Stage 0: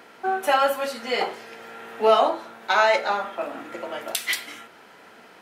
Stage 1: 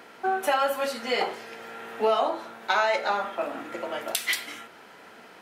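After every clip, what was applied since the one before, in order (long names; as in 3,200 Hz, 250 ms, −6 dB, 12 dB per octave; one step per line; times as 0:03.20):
downward compressor 3 to 1, threshold −21 dBFS, peak gain reduction 7 dB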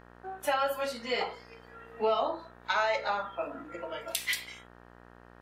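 noise reduction from a noise print of the clip's start 15 dB
hum with harmonics 60 Hz, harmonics 31, −50 dBFS −2 dB per octave
level −4.5 dB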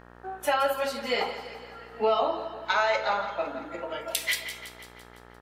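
repeating echo 169 ms, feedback 58%, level −12 dB
level +3.5 dB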